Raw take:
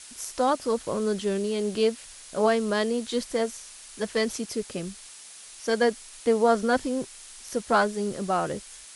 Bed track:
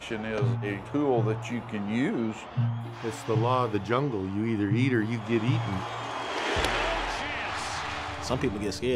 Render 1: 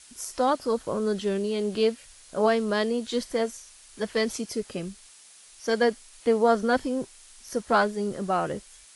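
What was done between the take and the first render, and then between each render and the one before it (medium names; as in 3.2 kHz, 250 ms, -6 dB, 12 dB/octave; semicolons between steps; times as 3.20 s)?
noise print and reduce 6 dB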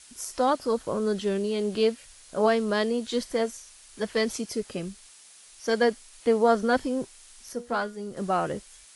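7.52–8.17 s: feedback comb 240 Hz, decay 0.29 s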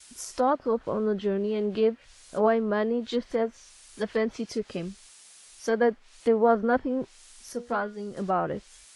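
low-pass that closes with the level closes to 1.7 kHz, closed at -22.5 dBFS; gate with hold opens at -48 dBFS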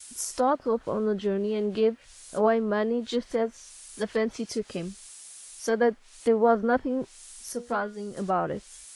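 FFT filter 2.4 kHz 0 dB, 4.8 kHz +2 dB, 9.1 kHz +8 dB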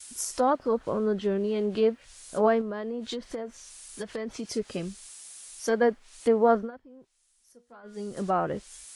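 2.61–4.48 s: compression 12:1, threshold -29 dBFS; 6.57–7.97 s: dip -22.5 dB, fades 0.14 s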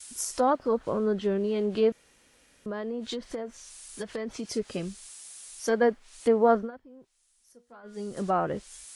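1.92–2.66 s: room tone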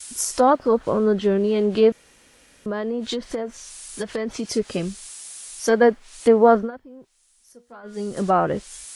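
trim +7.5 dB; peak limiter -3 dBFS, peak gain reduction 1.5 dB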